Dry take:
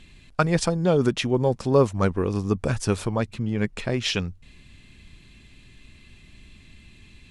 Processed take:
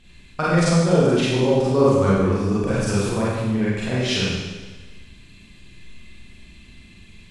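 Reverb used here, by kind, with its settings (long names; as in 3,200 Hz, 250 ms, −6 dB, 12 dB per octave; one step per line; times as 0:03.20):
four-comb reverb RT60 1.3 s, combs from 32 ms, DRR −9 dB
level −5.5 dB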